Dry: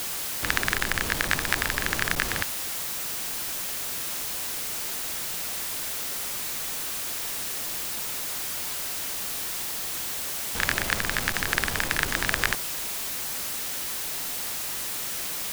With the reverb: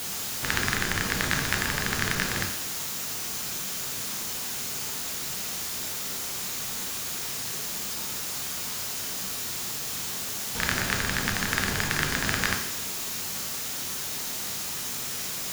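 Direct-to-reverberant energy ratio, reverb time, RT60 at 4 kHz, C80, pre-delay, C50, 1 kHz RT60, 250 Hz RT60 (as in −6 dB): 2.0 dB, 0.70 s, 0.70 s, 9.5 dB, 3 ms, 6.5 dB, 0.75 s, 0.70 s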